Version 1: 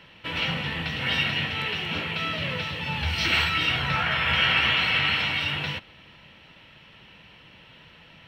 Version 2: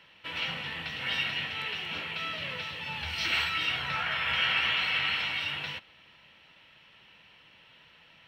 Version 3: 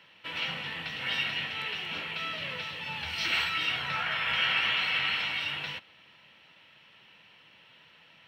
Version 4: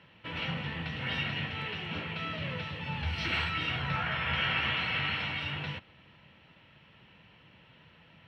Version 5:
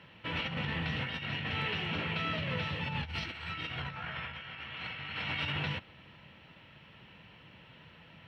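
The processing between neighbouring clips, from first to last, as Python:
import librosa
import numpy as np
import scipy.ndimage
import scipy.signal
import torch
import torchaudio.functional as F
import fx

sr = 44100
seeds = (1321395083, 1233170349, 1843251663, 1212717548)

y1 = fx.low_shelf(x, sr, hz=450.0, db=-9.5)
y1 = F.gain(torch.from_numpy(y1), -5.0).numpy()
y2 = scipy.signal.sosfilt(scipy.signal.butter(2, 100.0, 'highpass', fs=sr, output='sos'), y1)
y3 = fx.riaa(y2, sr, side='playback')
y4 = fx.over_compress(y3, sr, threshold_db=-36.0, ratio=-0.5)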